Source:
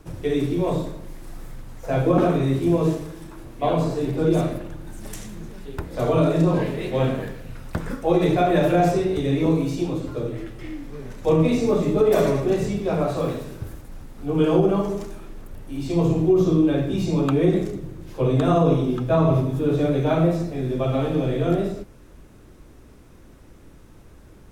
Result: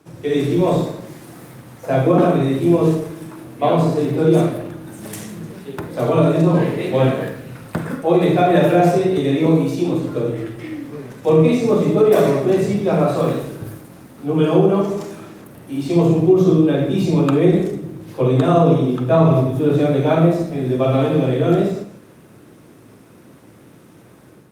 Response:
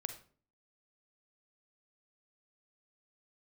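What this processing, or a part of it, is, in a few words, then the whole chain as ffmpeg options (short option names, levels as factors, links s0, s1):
far-field microphone of a smart speaker: -filter_complex "[0:a]asplit=3[s0][s1][s2];[s0]afade=t=out:st=7.66:d=0.02[s3];[s1]equalizer=f=5700:w=3.7:g=-4,afade=t=in:st=7.66:d=0.02,afade=t=out:st=8.36:d=0.02[s4];[s2]afade=t=in:st=8.36:d=0.02[s5];[s3][s4][s5]amix=inputs=3:normalize=0[s6];[1:a]atrim=start_sample=2205[s7];[s6][s7]afir=irnorm=-1:irlink=0,highpass=f=120:w=0.5412,highpass=f=120:w=1.3066,dynaudnorm=f=120:g=5:m=2.66" -ar 48000 -c:a libopus -b:a 48k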